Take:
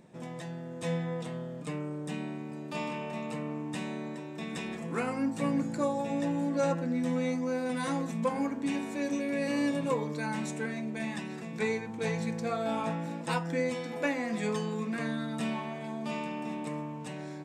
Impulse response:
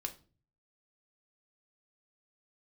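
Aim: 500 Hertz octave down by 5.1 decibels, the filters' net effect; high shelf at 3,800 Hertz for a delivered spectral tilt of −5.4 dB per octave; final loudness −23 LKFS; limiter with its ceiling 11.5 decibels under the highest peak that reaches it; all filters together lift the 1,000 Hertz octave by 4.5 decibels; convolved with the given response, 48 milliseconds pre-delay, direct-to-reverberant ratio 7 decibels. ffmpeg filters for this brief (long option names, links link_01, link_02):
-filter_complex "[0:a]equalizer=frequency=500:width_type=o:gain=-8,equalizer=frequency=1000:width_type=o:gain=7.5,highshelf=frequency=3800:gain=3,alimiter=level_in=2.5dB:limit=-24dB:level=0:latency=1,volume=-2.5dB,asplit=2[link_01][link_02];[1:a]atrim=start_sample=2205,adelay=48[link_03];[link_02][link_03]afir=irnorm=-1:irlink=0,volume=-6dB[link_04];[link_01][link_04]amix=inputs=2:normalize=0,volume=12dB"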